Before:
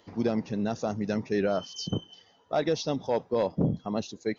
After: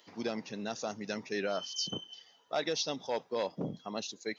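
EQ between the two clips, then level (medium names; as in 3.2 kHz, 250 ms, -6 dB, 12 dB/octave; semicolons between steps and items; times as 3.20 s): high-pass 130 Hz 12 dB/octave; tilt EQ +2.5 dB/octave; peaking EQ 2.9 kHz +3 dB 1.9 oct; -5.0 dB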